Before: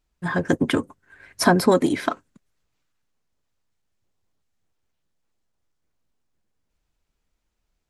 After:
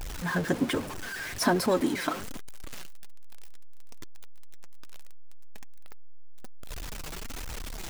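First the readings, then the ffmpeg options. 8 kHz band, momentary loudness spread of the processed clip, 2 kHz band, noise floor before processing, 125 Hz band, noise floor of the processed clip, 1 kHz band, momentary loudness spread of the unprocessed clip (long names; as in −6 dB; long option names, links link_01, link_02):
−2.5 dB, 20 LU, −4.5 dB, −77 dBFS, −6.5 dB, −37 dBFS, −7.0 dB, 10 LU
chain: -af "aeval=exprs='val(0)+0.5*0.0708*sgn(val(0))':channel_layout=same,flanger=delay=1.1:depth=5.6:regen=41:speed=1.2:shape=triangular,volume=-4.5dB"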